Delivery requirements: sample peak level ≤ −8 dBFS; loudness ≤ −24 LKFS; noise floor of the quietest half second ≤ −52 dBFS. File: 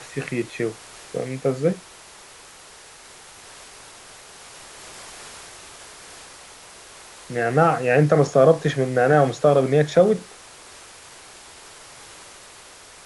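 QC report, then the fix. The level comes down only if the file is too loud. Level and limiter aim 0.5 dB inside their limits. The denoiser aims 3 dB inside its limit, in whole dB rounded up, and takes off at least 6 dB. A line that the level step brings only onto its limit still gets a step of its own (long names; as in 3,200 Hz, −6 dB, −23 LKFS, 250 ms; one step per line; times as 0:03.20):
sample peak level −4.5 dBFS: out of spec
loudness −20.0 LKFS: out of spec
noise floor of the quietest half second −45 dBFS: out of spec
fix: broadband denoise 6 dB, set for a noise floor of −45 dBFS
level −4.5 dB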